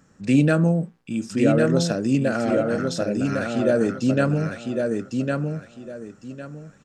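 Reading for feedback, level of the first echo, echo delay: 25%, -4.0 dB, 1105 ms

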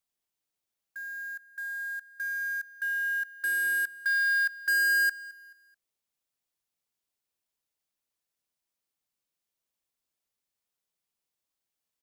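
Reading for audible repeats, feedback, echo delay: 2, 37%, 216 ms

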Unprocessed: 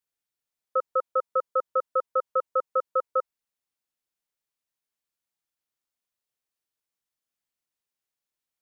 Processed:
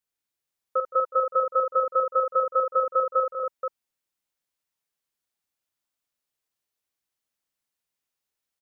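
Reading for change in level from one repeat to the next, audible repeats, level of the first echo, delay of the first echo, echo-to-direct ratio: no regular repeats, 4, -8.5 dB, 48 ms, -0.5 dB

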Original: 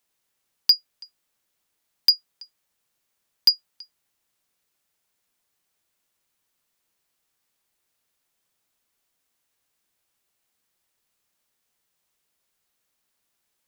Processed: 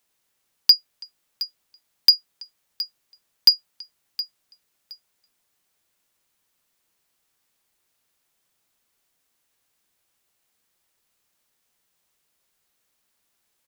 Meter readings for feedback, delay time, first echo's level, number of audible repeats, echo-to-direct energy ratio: 22%, 718 ms, -15.0 dB, 2, -15.0 dB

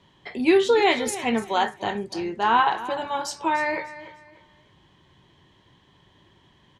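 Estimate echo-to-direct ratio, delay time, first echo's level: -14.5 dB, 297 ms, -15.0 dB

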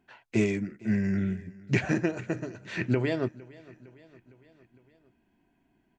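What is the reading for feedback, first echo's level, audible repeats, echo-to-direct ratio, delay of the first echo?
59%, -22.0 dB, 3, -20.0 dB, 458 ms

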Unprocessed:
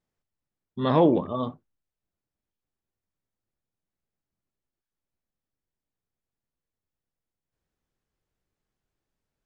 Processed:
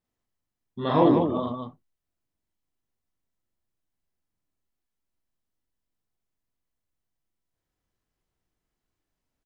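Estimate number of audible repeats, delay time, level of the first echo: 2, 41 ms, -0.5 dB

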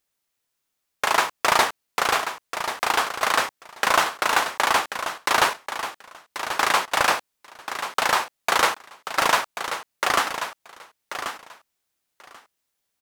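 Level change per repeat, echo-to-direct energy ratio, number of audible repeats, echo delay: -16.5 dB, -9.5 dB, 2, 1086 ms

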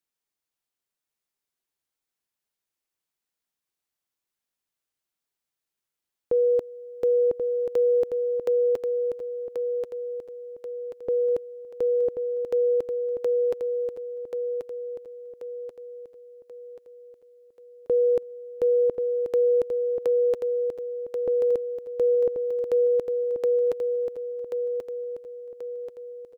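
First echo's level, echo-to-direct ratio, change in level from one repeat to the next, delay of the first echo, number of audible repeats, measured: -6.0 dB, -5.0 dB, -6.5 dB, 1084 ms, 5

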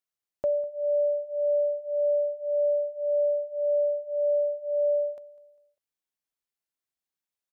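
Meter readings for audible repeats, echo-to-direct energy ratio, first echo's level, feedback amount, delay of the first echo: 2, -19.5 dB, -20.0 dB, 39%, 200 ms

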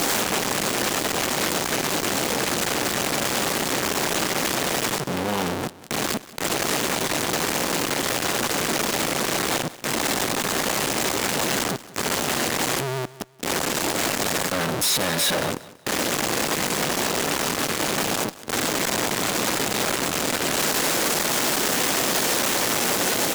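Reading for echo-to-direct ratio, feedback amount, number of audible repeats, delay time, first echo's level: -18.0 dB, 30%, 2, 186 ms, -18.5 dB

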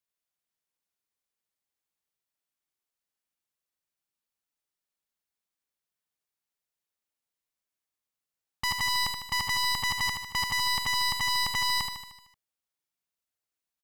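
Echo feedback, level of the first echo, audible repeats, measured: 57%, -6.0 dB, 6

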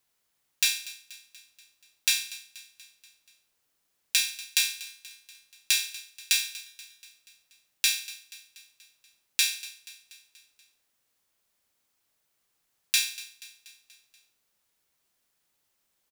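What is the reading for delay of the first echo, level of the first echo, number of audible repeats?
240 ms, -18.5 dB, 4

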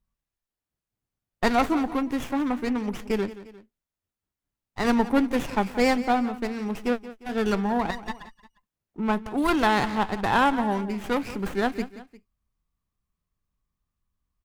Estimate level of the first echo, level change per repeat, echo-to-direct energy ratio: -15.5 dB, -6.0 dB, -14.5 dB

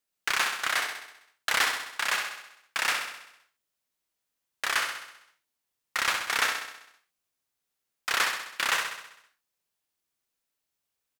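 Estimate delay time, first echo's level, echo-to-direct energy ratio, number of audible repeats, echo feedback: 65 ms, -6.0 dB, -4.0 dB, 7, 58%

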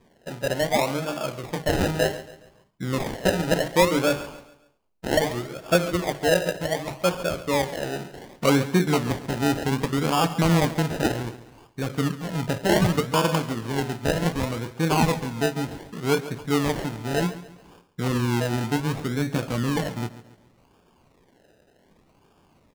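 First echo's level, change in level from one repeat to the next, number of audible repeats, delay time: -15.5 dB, -8.0 dB, 3, 139 ms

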